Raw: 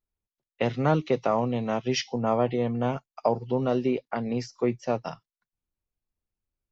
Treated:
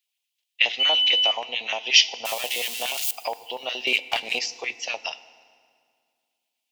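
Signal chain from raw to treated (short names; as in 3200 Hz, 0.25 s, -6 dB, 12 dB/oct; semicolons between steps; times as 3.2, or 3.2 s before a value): 2.25–3.11 switching spikes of -27 dBFS; LFO high-pass square 8.4 Hz 770–1600 Hz; 3.87–4.39 sample leveller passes 2; in parallel at +2 dB: compressor, threshold -31 dBFS, peak gain reduction 14 dB; 0.79–1.31 on the sum: whine 3000 Hz -30 dBFS; resonant high shelf 2000 Hz +12.5 dB, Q 3; FDN reverb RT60 2.1 s, low-frequency decay 1.3×, high-frequency decay 0.8×, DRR 15.5 dB; gain -7 dB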